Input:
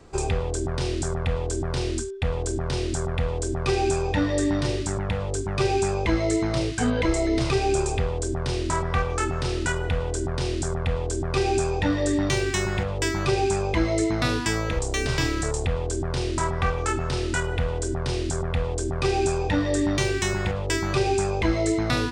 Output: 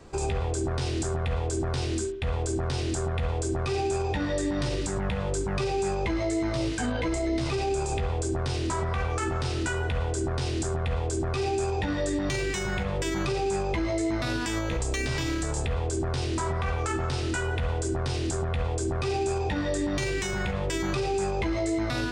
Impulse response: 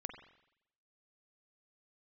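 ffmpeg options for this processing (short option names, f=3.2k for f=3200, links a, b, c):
-filter_complex "[0:a]asplit=2[a][b];[1:a]atrim=start_sample=2205,adelay=15[c];[b][c]afir=irnorm=-1:irlink=0,volume=-3dB[d];[a][d]amix=inputs=2:normalize=0,alimiter=limit=-20dB:level=0:latency=1:release=44"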